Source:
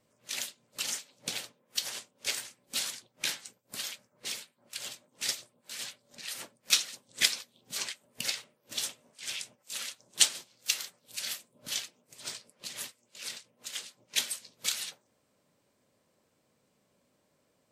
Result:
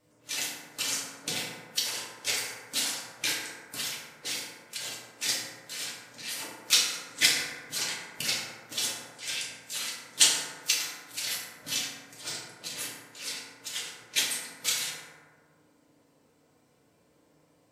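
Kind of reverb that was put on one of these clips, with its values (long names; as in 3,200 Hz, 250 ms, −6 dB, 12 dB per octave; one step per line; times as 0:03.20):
feedback delay network reverb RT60 1.7 s, low-frequency decay 0.9×, high-frequency decay 0.35×, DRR −5.5 dB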